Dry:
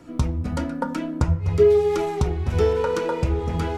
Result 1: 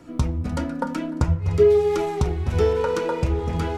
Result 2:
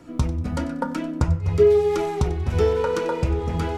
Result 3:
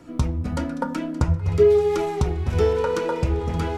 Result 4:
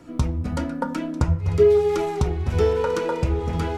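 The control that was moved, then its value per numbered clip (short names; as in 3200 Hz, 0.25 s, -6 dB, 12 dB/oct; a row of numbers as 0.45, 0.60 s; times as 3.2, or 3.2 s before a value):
thin delay, time: 299, 94, 573, 945 ms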